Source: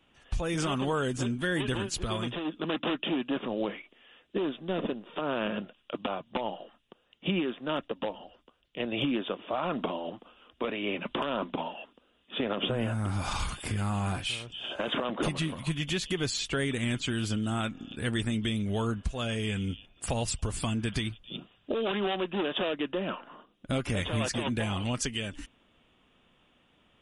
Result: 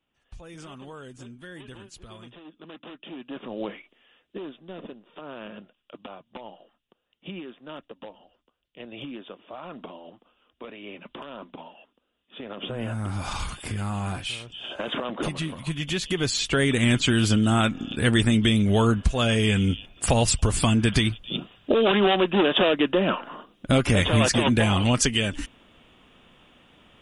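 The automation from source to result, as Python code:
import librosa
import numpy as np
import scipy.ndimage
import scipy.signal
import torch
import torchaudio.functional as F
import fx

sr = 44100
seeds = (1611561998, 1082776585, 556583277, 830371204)

y = fx.gain(x, sr, db=fx.line((2.96, -13.0), (3.65, 0.0), (4.72, -8.5), (12.39, -8.5), (12.92, 1.0), (15.63, 1.0), (16.91, 10.0)))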